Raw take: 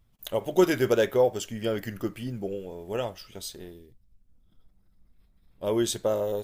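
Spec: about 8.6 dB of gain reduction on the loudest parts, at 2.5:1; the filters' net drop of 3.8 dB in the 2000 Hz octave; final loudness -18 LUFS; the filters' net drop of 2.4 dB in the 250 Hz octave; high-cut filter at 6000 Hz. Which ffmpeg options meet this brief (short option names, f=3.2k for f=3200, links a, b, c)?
-af "lowpass=6k,equalizer=f=250:t=o:g=-4,equalizer=f=2k:t=o:g=-5,acompressor=threshold=-30dB:ratio=2.5,volume=17dB"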